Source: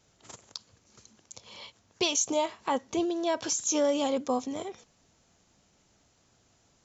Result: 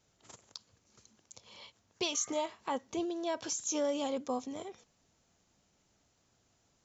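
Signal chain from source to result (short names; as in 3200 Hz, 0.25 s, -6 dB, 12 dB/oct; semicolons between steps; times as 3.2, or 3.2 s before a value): spectral repair 2.15–2.39, 1100–2200 Hz both; gain -6.5 dB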